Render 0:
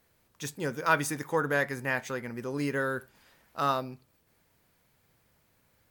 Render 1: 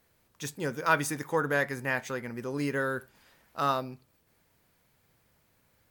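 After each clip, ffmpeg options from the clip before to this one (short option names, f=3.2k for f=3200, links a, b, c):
-af anull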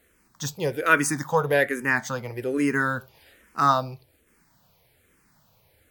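-filter_complex "[0:a]asplit=2[a][b];[b]afreqshift=-1.2[c];[a][c]amix=inputs=2:normalize=1,volume=9dB"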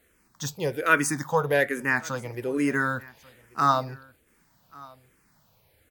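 -af "aecho=1:1:1137:0.0668,volume=-1.5dB"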